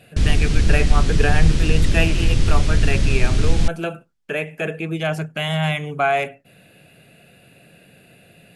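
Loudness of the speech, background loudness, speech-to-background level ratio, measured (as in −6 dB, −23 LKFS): −24.0 LKFS, −20.5 LKFS, −3.5 dB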